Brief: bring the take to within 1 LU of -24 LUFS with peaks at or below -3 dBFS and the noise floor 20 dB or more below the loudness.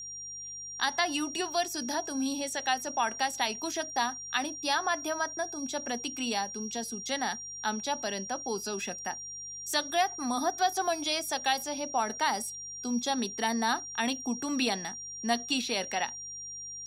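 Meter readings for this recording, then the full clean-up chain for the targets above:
hum 50 Hz; highest harmonic 150 Hz; hum level -62 dBFS; steady tone 5.7 kHz; tone level -39 dBFS; loudness -31.5 LUFS; peak level -14.0 dBFS; loudness target -24.0 LUFS
-> de-hum 50 Hz, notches 3; band-stop 5.7 kHz, Q 30; trim +7.5 dB

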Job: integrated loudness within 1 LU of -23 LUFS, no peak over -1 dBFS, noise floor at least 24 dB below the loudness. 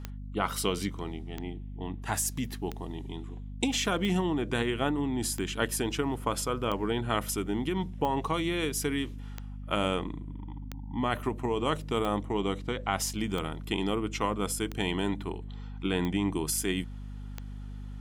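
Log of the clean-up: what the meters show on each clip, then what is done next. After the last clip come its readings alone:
clicks found 14; hum 50 Hz; highest harmonic 250 Hz; hum level -37 dBFS; loudness -31.0 LUFS; peak level -12.0 dBFS; loudness target -23.0 LUFS
-> de-click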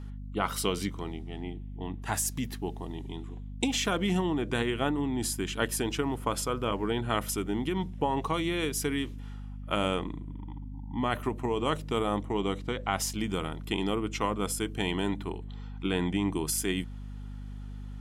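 clicks found 0; hum 50 Hz; highest harmonic 250 Hz; hum level -37 dBFS
-> de-hum 50 Hz, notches 5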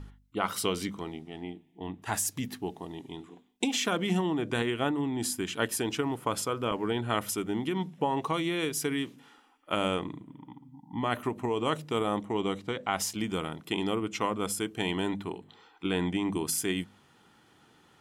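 hum not found; loudness -31.5 LUFS; peak level -11.5 dBFS; loudness target -23.0 LUFS
-> trim +8.5 dB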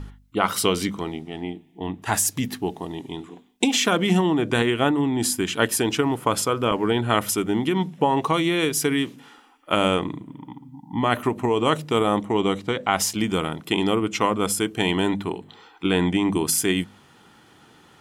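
loudness -23.0 LUFS; peak level -3.0 dBFS; noise floor -54 dBFS

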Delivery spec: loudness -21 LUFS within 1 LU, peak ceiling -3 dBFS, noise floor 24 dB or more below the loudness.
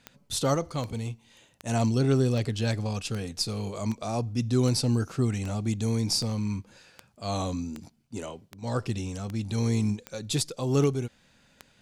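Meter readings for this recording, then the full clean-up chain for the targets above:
clicks found 16; loudness -28.5 LUFS; peak level -11.5 dBFS; loudness target -21.0 LUFS
-> de-click; trim +7.5 dB

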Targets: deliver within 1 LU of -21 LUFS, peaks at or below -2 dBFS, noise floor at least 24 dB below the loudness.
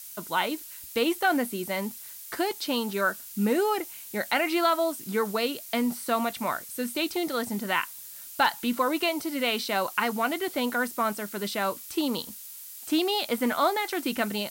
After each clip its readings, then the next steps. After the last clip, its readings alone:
noise floor -43 dBFS; noise floor target -52 dBFS; loudness -28.0 LUFS; peak level -10.5 dBFS; loudness target -21.0 LUFS
-> noise print and reduce 9 dB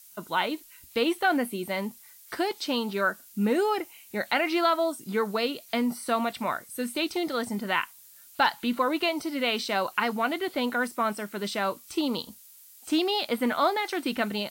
noise floor -52 dBFS; loudness -28.0 LUFS; peak level -10.5 dBFS; loudness target -21.0 LUFS
-> trim +7 dB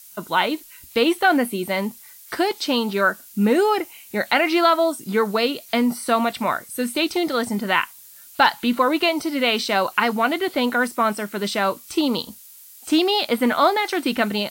loudness -21.0 LUFS; peak level -3.5 dBFS; noise floor -45 dBFS

